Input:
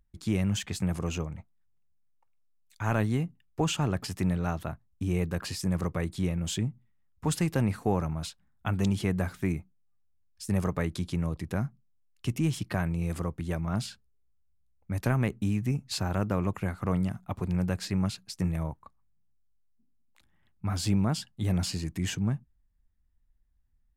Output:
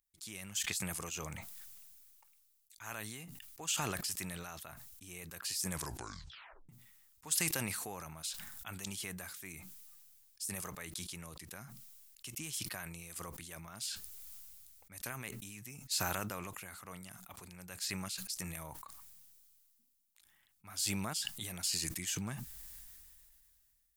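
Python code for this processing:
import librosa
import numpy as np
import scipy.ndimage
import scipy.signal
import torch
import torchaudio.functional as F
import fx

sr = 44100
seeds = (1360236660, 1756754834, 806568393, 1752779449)

y = fx.edit(x, sr, fx.tape_stop(start_s=5.7, length_s=0.99), tone=tone)
y = F.preemphasis(torch.from_numpy(y), 0.97).numpy()
y = fx.sustainer(y, sr, db_per_s=23.0)
y = y * librosa.db_to_amplitude(1.5)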